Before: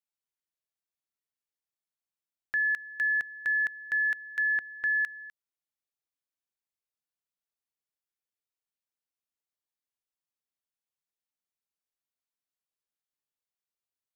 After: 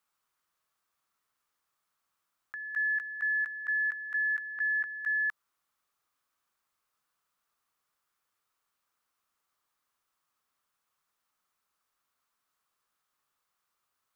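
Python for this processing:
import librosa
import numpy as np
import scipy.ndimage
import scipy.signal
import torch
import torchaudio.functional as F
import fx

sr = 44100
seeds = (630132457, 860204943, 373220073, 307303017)

y = fx.peak_eq(x, sr, hz=1200.0, db=14.0, octaves=0.8)
y = fx.over_compress(y, sr, threshold_db=-35.0, ratio=-1.0)
y = y * 10.0 ** (1.0 / 20.0)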